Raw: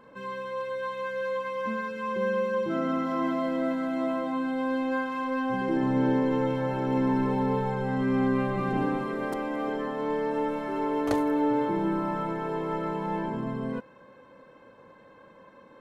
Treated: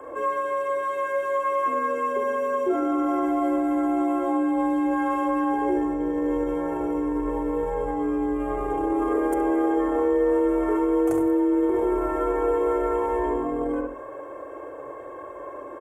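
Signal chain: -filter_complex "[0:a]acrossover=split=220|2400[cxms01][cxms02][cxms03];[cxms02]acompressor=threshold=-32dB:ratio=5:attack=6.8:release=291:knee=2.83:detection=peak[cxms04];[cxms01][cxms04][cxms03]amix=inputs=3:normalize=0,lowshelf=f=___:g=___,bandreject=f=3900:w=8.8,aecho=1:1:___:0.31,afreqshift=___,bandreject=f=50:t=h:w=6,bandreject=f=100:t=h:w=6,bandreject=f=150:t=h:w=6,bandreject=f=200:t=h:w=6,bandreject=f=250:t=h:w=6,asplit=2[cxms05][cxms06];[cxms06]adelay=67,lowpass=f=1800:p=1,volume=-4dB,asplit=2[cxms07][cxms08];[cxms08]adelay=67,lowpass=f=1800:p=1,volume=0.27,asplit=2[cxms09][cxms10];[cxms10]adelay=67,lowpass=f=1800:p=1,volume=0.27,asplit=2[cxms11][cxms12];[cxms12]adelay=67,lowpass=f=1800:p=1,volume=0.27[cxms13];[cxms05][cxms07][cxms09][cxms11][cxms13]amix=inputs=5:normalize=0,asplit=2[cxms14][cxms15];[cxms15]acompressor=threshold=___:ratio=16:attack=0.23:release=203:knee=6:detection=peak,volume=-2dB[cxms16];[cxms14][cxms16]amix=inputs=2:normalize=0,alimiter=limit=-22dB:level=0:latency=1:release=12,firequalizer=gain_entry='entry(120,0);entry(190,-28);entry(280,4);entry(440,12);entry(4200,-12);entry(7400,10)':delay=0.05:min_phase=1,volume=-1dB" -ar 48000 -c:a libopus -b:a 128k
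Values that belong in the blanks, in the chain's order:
210, 8.5, 2.8, 34, -35dB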